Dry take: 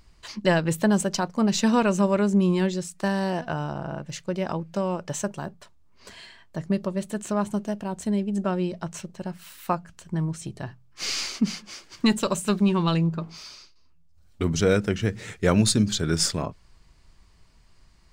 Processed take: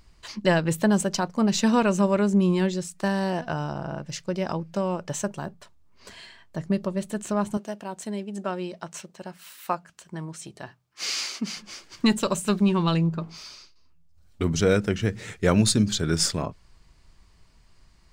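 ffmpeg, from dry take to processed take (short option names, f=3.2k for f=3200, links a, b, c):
-filter_complex "[0:a]asettb=1/sr,asplit=3[a][b][c];[a]atrim=end=3.454[d];[b]atrim=start=3.45:end=4.71,asetpts=PTS-STARTPTS,afade=t=in:d=0.004:c=qsin,afade=t=out:st=1.256:d=0.004:c=qsin,equalizer=f=5.2k:w=3.9:g=6[e];[c]atrim=start=4.706[f];[d][e]acrossfade=d=0.004:c1=hsin:c2=qsin[g];[g][f]acrossfade=d=0.004:c1=qsin:c2=hsin,asettb=1/sr,asplit=3[h][i][j];[h]atrim=end=7.574[k];[i]atrim=start=7.57:end=11.57,asetpts=PTS-STARTPTS,afade=t=in:d=0.004:c=qsin,afade=t=out:st=3.996:d=0.004:c=qsin,highpass=f=460:p=1[l];[j]atrim=start=11.566[m];[k][l]acrossfade=d=0.004:c1=hsin:c2=qsin[n];[n][m]acrossfade=d=0.004:c1=qsin:c2=hsin"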